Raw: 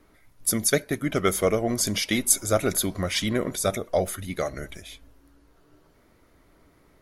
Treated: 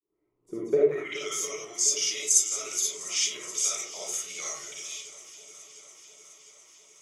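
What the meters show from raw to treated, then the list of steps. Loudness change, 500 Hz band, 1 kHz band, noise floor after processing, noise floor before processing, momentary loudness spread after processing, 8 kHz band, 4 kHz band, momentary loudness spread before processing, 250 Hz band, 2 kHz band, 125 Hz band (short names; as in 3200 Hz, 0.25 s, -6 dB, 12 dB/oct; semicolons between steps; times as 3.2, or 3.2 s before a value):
-2.0 dB, -4.0 dB, -12.0 dB, -75 dBFS, -60 dBFS, 22 LU, +2.5 dB, -1.0 dB, 10 LU, -14.0 dB, -7.0 dB, under -20 dB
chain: opening faded in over 1.49 s; ripple EQ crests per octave 0.72, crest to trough 12 dB; vocal rider 2 s; band-pass sweep 360 Hz -> 5600 Hz, 0.71–1.21; on a send: swung echo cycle 0.705 s, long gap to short 1.5:1, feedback 64%, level -17 dB; on the sum: digital reverb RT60 0.49 s, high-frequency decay 0.45×, pre-delay 15 ms, DRR -6 dB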